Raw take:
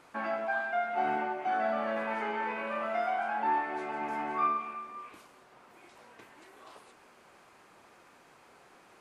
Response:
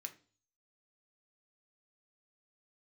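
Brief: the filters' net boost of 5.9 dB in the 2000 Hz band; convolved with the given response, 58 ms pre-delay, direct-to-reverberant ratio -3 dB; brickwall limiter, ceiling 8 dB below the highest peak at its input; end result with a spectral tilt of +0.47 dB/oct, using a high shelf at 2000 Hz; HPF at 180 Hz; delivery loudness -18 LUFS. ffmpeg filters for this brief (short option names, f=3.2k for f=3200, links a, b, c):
-filter_complex "[0:a]highpass=180,highshelf=f=2k:g=7,equalizer=f=2k:t=o:g=4,alimiter=limit=-23.5dB:level=0:latency=1,asplit=2[a][b];[1:a]atrim=start_sample=2205,adelay=58[c];[b][c]afir=irnorm=-1:irlink=0,volume=7dB[d];[a][d]amix=inputs=2:normalize=0,volume=10.5dB"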